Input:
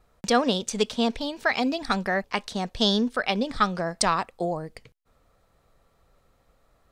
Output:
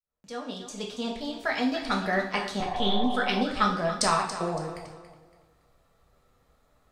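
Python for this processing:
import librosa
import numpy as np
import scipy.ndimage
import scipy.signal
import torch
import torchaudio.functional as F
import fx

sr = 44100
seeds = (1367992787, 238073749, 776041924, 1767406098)

p1 = fx.fade_in_head(x, sr, length_s=2.13)
p2 = fx.lpc_vocoder(p1, sr, seeds[0], excitation='pitch_kept', order=10, at=(2.6, 3.1))
p3 = p2 + fx.echo_feedback(p2, sr, ms=281, feedback_pct=33, wet_db=-12.0, dry=0)
p4 = fx.rev_double_slope(p3, sr, seeds[1], early_s=0.52, late_s=1.8, knee_db=-21, drr_db=-0.5)
p5 = fx.spec_repair(p4, sr, seeds[2], start_s=2.68, length_s=0.73, low_hz=540.0, high_hz=1200.0, source='before')
y = F.gain(torch.from_numpy(p5), -4.0).numpy()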